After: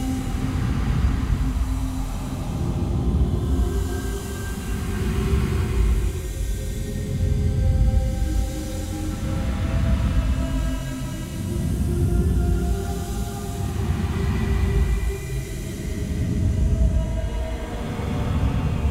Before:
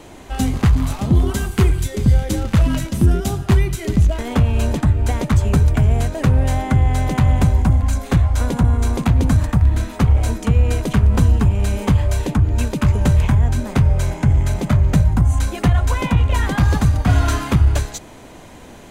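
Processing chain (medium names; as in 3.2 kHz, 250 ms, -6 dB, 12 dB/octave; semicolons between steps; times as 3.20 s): Paulstretch 4.7×, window 0.50 s, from 0.47 s; trim -7 dB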